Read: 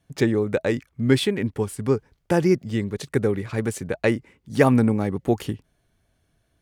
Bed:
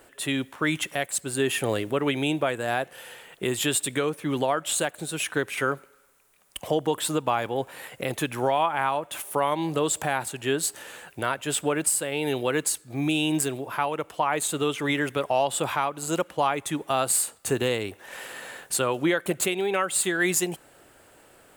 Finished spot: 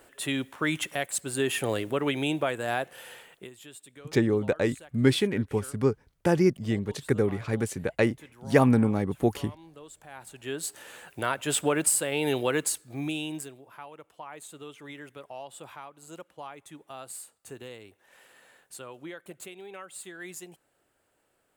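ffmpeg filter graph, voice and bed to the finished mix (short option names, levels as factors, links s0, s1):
-filter_complex "[0:a]adelay=3950,volume=0.708[s0];[1:a]volume=10.6,afade=t=out:st=3.18:d=0.32:silence=0.0944061,afade=t=in:st=10.06:d=1.47:silence=0.0707946,afade=t=out:st=12.34:d=1.21:silence=0.125893[s1];[s0][s1]amix=inputs=2:normalize=0"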